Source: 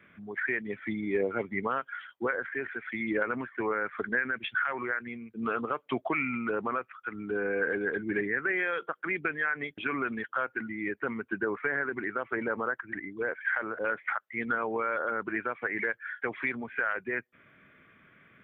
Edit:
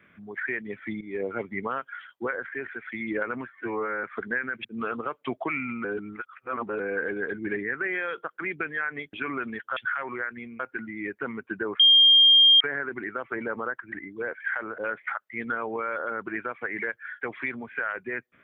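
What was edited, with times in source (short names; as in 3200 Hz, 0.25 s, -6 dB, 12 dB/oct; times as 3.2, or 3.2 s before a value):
1.01–1.3 fade in, from -12.5 dB
3.48–3.85 stretch 1.5×
4.46–5.29 move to 10.41
6.49–7.44 reverse
11.61 add tone 3210 Hz -12.5 dBFS 0.81 s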